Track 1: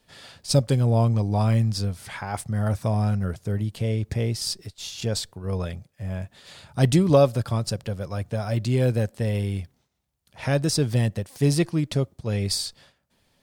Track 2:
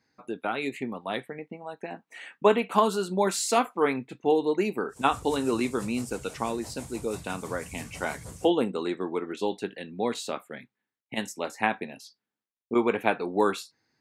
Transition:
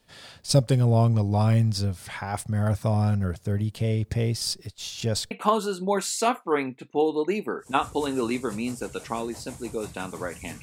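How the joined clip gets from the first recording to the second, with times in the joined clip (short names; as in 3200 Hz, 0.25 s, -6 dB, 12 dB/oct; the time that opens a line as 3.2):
track 1
5.31 switch to track 2 from 2.61 s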